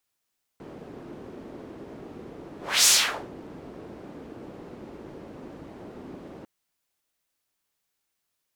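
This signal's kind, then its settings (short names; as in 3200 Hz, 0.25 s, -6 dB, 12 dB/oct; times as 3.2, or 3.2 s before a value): whoosh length 5.85 s, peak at 2.27, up 0.30 s, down 0.45 s, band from 330 Hz, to 6900 Hz, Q 1.4, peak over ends 26 dB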